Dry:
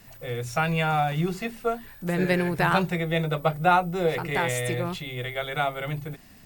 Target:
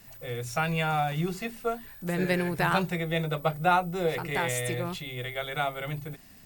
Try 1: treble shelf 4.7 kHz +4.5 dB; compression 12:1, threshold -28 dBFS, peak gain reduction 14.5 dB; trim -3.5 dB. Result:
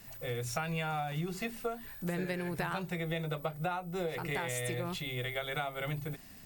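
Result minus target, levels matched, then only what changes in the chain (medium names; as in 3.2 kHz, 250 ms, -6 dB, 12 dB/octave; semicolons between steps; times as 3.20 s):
compression: peak gain reduction +14.5 dB
remove: compression 12:1, threshold -28 dBFS, peak gain reduction 14.5 dB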